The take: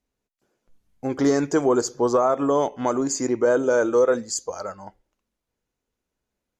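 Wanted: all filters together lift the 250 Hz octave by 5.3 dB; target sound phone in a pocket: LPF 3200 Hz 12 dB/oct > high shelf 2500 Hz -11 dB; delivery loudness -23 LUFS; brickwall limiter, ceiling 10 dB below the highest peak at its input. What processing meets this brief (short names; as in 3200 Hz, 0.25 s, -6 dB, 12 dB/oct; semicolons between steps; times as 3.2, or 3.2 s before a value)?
bell 250 Hz +6.5 dB; limiter -15.5 dBFS; LPF 3200 Hz 12 dB/oct; high shelf 2500 Hz -11 dB; gain +2 dB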